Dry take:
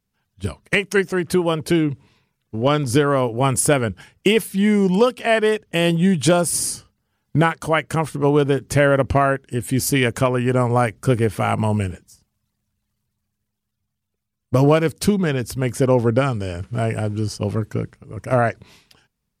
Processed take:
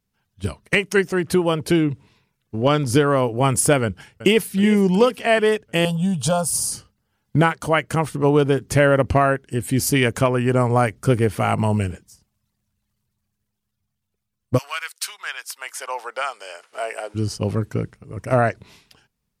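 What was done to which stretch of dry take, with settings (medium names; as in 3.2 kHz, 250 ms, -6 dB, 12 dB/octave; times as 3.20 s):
3.83–4.44 s: echo throw 370 ms, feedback 55%, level -14 dB
5.85–6.72 s: static phaser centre 830 Hz, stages 4
14.57–17.14 s: high-pass 1.4 kHz -> 500 Hz 24 dB/octave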